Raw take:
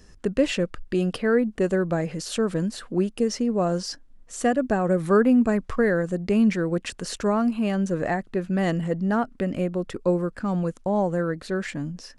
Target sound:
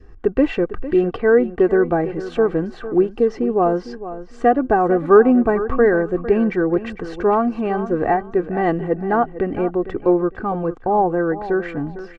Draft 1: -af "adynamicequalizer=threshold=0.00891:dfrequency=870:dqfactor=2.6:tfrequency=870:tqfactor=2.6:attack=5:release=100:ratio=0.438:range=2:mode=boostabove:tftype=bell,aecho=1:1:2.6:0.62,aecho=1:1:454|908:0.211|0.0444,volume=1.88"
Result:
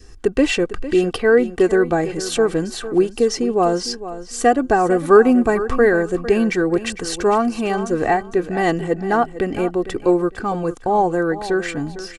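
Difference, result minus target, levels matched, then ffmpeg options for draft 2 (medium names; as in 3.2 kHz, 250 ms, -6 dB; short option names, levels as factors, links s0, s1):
2 kHz band +3.5 dB
-af "adynamicequalizer=threshold=0.00891:dfrequency=870:dqfactor=2.6:tfrequency=870:tqfactor=2.6:attack=5:release=100:ratio=0.438:range=2:mode=boostabove:tftype=bell,lowpass=1600,aecho=1:1:2.6:0.62,aecho=1:1:454|908:0.211|0.0444,volume=1.88"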